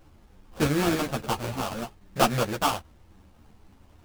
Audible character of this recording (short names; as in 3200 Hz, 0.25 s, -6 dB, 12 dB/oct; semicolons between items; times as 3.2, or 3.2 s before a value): aliases and images of a low sample rate 2000 Hz, jitter 20%; a shimmering, thickened sound